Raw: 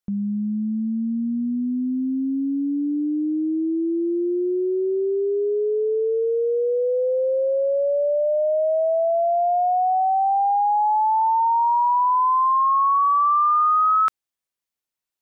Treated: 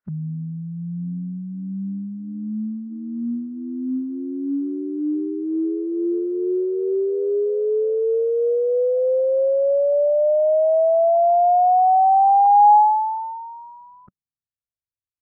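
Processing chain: low-pass sweep 1.5 kHz -> 100 Hz, 12.46–14.65 s; formant-preserving pitch shift -4.5 st

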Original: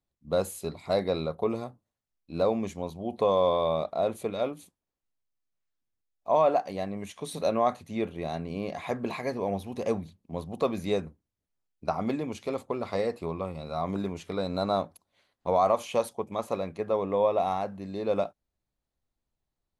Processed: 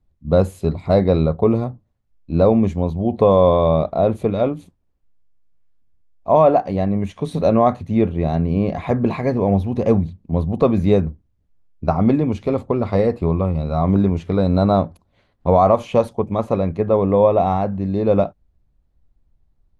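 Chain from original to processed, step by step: RIAA curve playback; trim +8 dB

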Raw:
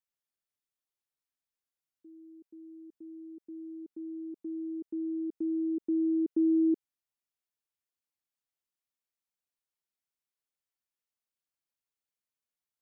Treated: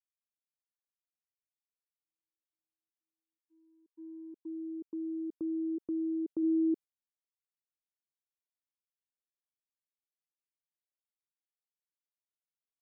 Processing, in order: 5.76–6.42 s: high-pass 230 Hz -> 320 Hz 6 dB/octave; gate -40 dBFS, range -57 dB; trim -3 dB

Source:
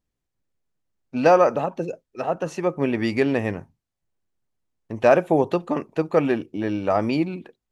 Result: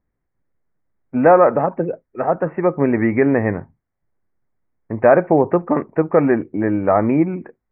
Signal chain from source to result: steep low-pass 2.2 kHz 72 dB/octave; in parallel at +3 dB: peak limiter -11.5 dBFS, peak gain reduction 7 dB; on the sum: trim -1 dB

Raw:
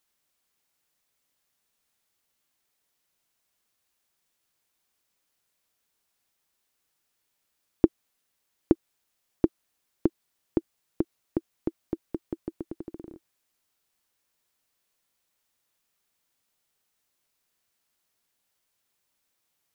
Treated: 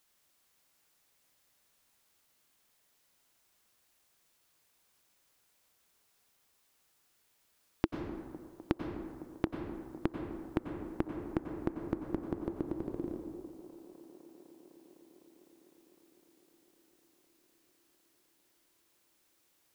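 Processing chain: compression 4:1, threshold -35 dBFS, peak gain reduction 18.5 dB; on a send: feedback echo behind a band-pass 253 ms, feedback 84%, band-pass 490 Hz, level -15.5 dB; on the sum: plate-style reverb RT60 1.7 s, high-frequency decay 0.5×, pre-delay 80 ms, DRR 4 dB; trim +4 dB

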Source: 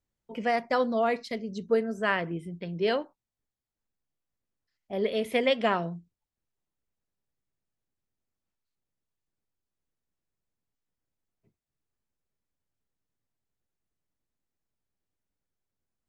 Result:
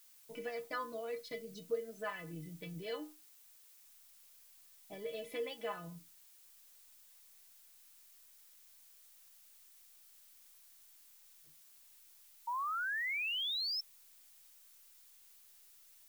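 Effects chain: compression 3:1, threshold -35 dBFS, peak gain reduction 11.5 dB; inharmonic resonator 150 Hz, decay 0.27 s, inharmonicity 0.008; painted sound rise, 12.47–13.81 s, 920–5400 Hz -43 dBFS; added noise blue -68 dBFS; trim +6 dB

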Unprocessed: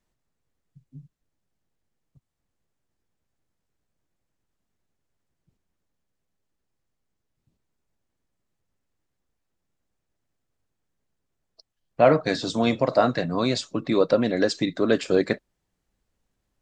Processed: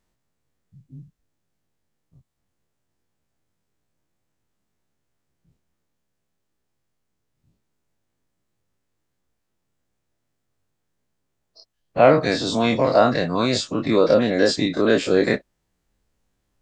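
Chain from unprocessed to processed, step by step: every event in the spectrogram widened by 60 ms

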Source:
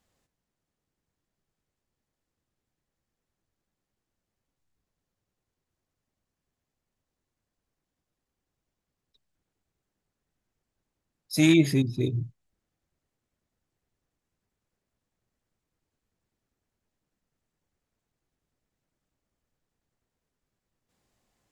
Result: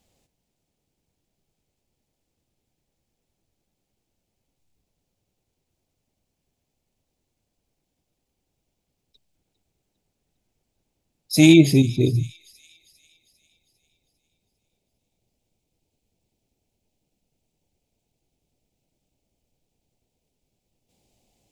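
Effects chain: high-order bell 1.4 kHz -9 dB 1.1 oct, from 11.45 s -16 dB; feedback echo behind a high-pass 401 ms, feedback 51%, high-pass 3.4 kHz, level -16.5 dB; trim +7.5 dB

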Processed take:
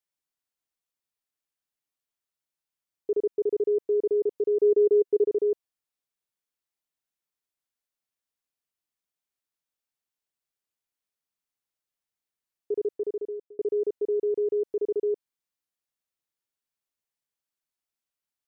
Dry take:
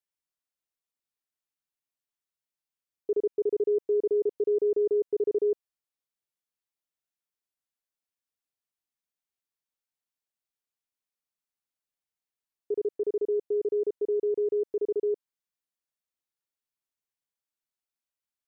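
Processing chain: 4.62–5.25 s: peaking EQ 400 Hz +4.5 dB 0.42 oct; 12.90–13.59 s: fade out; trim +1 dB

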